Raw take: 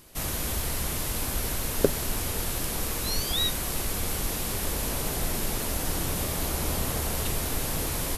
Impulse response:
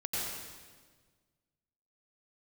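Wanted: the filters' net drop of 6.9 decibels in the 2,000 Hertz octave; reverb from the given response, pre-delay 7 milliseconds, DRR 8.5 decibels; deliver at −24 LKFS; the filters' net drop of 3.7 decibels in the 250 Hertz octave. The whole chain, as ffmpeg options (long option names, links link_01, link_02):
-filter_complex "[0:a]equalizer=frequency=250:width_type=o:gain=-5,equalizer=frequency=2000:width_type=o:gain=-9,asplit=2[link_01][link_02];[1:a]atrim=start_sample=2205,adelay=7[link_03];[link_02][link_03]afir=irnorm=-1:irlink=0,volume=-13.5dB[link_04];[link_01][link_04]amix=inputs=2:normalize=0,volume=5dB"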